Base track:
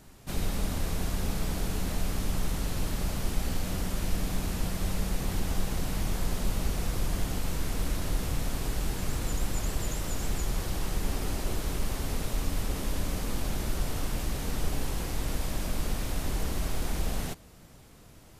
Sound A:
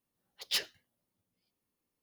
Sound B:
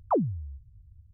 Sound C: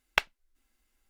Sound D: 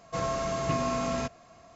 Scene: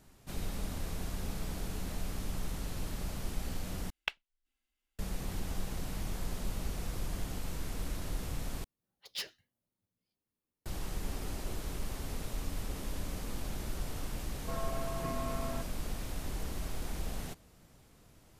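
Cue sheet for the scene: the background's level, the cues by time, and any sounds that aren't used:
base track -7.5 dB
3.9 replace with C -14 dB + bell 3000 Hz +8 dB 0.79 oct
8.64 replace with A -7.5 dB + low shelf 250 Hz +5.5 dB
14.35 add D -9.5 dB + LPF 2100 Hz
not used: B

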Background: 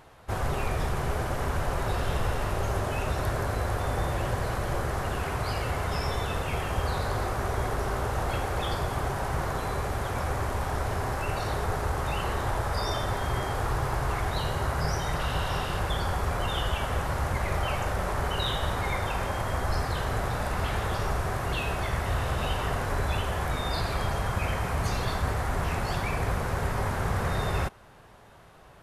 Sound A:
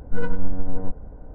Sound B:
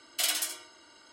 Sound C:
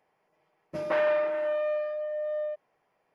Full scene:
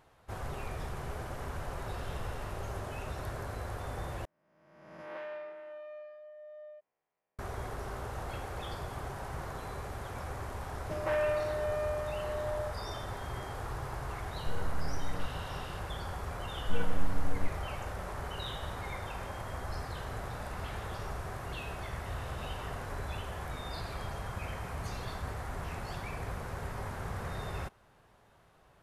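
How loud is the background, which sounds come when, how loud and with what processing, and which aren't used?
background -10.5 dB
4.25 replace with C -17.5 dB + spectral swells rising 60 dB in 1.26 s
10.16 add C -5.5 dB
14.35 add A -11 dB + compressor, threshold -15 dBFS
16.57 add A -8 dB
not used: B

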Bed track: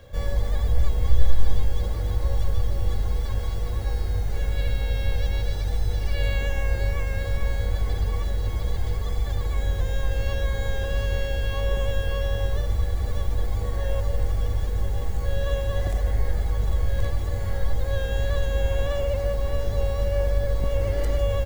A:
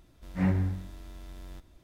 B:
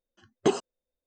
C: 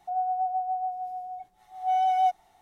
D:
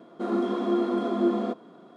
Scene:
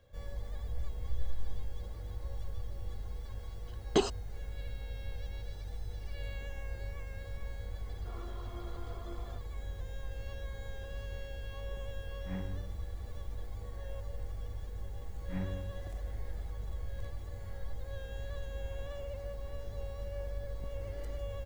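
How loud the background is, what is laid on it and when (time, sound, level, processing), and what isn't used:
bed track -16.5 dB
3.5 add B -4 dB + bell 4000 Hz +8.5 dB
7.85 add D -16 dB + Bessel high-pass 720 Hz
11.9 add A -14.5 dB
14.93 add A -12.5 dB
not used: C

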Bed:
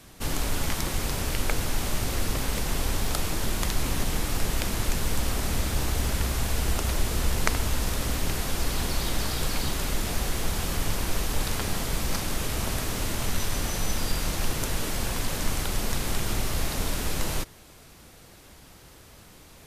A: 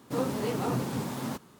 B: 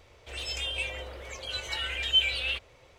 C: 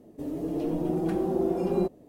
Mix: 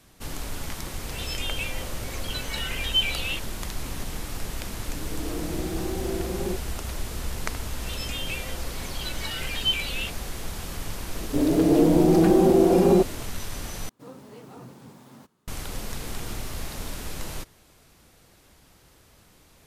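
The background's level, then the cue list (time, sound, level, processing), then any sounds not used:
bed -6 dB
0.81 add B
4.69 add C -9.5 dB + AGC gain up to 5 dB
7.52 add B -1.5 dB
11.15 add C -8.5 dB + maximiser +20 dB
13.89 replace with A -14.5 dB
15.55 add A -18 dB

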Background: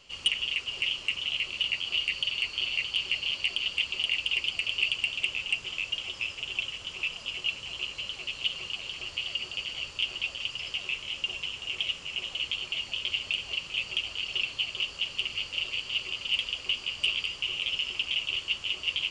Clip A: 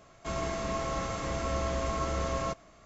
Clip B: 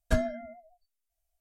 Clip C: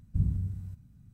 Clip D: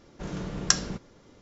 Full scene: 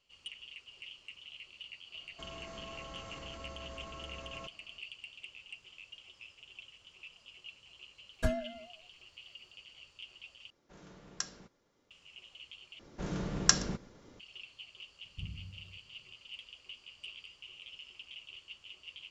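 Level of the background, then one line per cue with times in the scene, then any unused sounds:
background -19.5 dB
1.94 add A -9.5 dB + limiter -29.5 dBFS
8.12 add B -5 dB
10.5 replace with D -15.5 dB + low shelf 290 Hz -9 dB
12.79 replace with D -2 dB + echo 0.121 s -23.5 dB
15.03 add C -16 dB

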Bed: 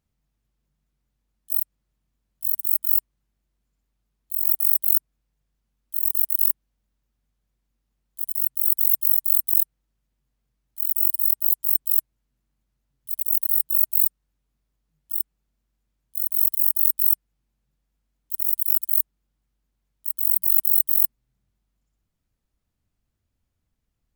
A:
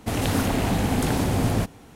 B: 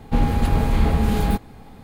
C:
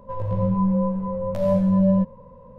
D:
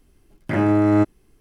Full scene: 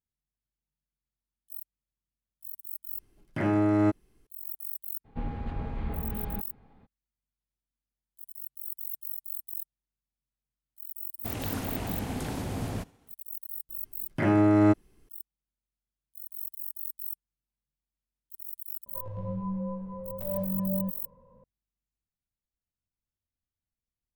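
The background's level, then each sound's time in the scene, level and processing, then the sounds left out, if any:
bed -18 dB
2.87 add D -7 dB
5.04 add B -15.5 dB, fades 0.02 s + LPF 2600 Hz
11.18 add A -11 dB + expander -43 dBFS
13.69 add D -4 dB
18.86 add C -12.5 dB

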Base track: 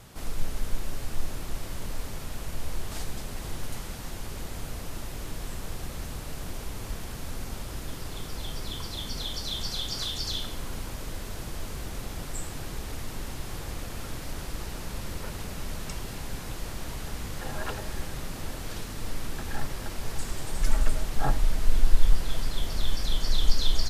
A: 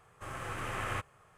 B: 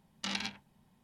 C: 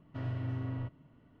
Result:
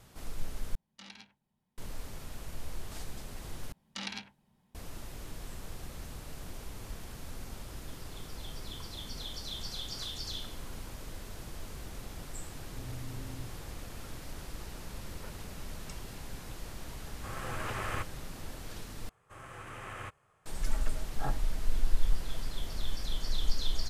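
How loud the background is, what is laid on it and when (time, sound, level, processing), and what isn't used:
base track -7.5 dB
0.75 replace with B -14.5 dB
3.72 replace with B -3.5 dB
12.61 add C -8 dB + steep low-pass 640 Hz 96 dB/oct
17.02 add A -1 dB
19.09 replace with A -7 dB

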